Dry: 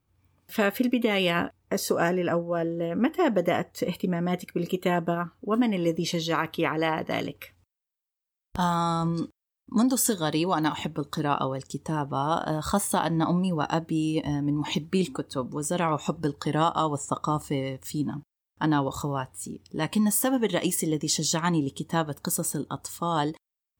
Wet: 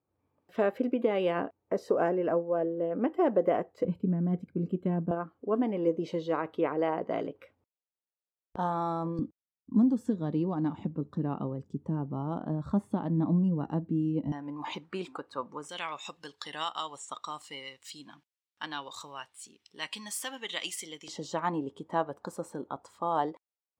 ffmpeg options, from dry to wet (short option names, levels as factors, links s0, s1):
-af "asetnsamples=n=441:p=0,asendcmd='3.85 bandpass f 170;5.11 bandpass f 490;9.19 bandpass f 200;14.32 bandpass f 1100;15.69 bandpass f 3200;21.08 bandpass f 690',bandpass=f=520:t=q:w=1.1:csg=0"